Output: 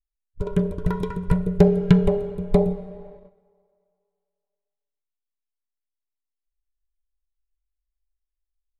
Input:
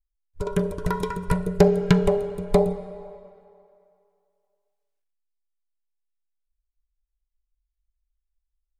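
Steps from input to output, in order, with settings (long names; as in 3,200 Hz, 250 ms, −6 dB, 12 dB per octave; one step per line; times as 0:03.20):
in parallel at −5.5 dB: slack as between gear wheels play −38 dBFS
on the sum: noise gate −44 dBFS, range −6 dB
drawn EQ curve 170 Hz 0 dB, 1,100 Hz −9 dB, 3,400 Hz −7 dB, 5,100 Hz −13 dB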